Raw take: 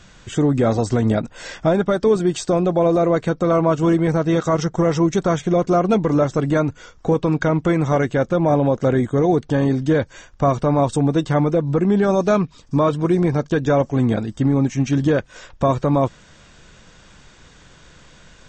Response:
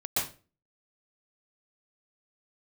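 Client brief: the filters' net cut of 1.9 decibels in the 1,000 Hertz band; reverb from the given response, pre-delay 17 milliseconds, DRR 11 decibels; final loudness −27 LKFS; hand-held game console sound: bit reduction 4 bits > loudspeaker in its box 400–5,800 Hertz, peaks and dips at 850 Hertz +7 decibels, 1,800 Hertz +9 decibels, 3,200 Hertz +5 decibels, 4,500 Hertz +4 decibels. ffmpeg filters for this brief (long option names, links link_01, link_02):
-filter_complex "[0:a]equalizer=frequency=1000:width_type=o:gain=-7,asplit=2[link_01][link_02];[1:a]atrim=start_sample=2205,adelay=17[link_03];[link_02][link_03]afir=irnorm=-1:irlink=0,volume=-19dB[link_04];[link_01][link_04]amix=inputs=2:normalize=0,acrusher=bits=3:mix=0:aa=0.000001,highpass=400,equalizer=frequency=850:width_type=q:width=4:gain=7,equalizer=frequency=1800:width_type=q:width=4:gain=9,equalizer=frequency=3200:width_type=q:width=4:gain=5,equalizer=frequency=4500:width_type=q:width=4:gain=4,lowpass=frequency=5800:width=0.5412,lowpass=frequency=5800:width=1.3066,volume=-6.5dB"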